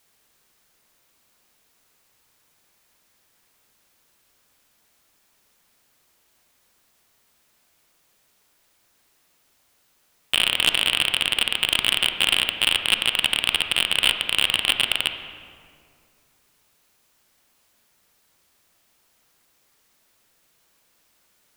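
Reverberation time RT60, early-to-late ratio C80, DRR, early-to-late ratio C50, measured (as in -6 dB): 2.2 s, 8.5 dB, 6.0 dB, 7.5 dB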